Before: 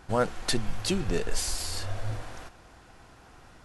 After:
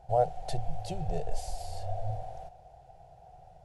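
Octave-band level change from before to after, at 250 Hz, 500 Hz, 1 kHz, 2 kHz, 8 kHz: -12.0, -1.0, +3.0, -18.5, -15.5 dB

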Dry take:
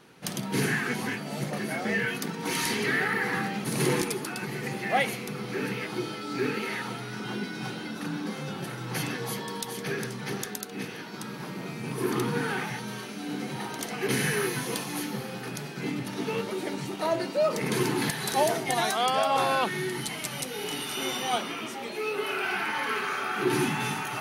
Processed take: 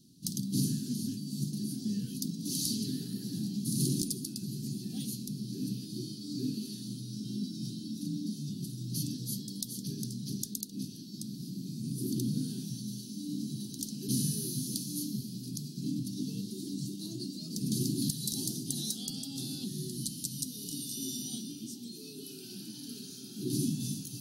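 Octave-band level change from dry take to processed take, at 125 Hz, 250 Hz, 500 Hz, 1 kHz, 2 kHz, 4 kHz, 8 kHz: -1.0 dB, -2.0 dB, -19.0 dB, under -40 dB, under -35 dB, -6.0 dB, -1.0 dB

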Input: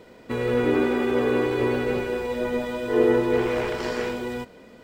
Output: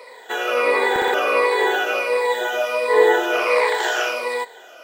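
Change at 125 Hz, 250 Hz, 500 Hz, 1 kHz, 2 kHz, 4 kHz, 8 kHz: under -20 dB, -8.5 dB, +4.0 dB, +11.5 dB, +11.5 dB, +11.0 dB, n/a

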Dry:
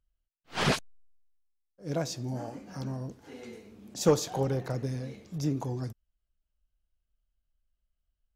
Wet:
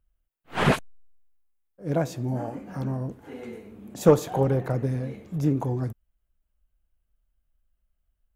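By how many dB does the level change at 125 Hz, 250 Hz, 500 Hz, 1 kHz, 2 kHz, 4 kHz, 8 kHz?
+6.5, +6.5, +6.5, +6.0, +4.0, -2.5, -3.5 dB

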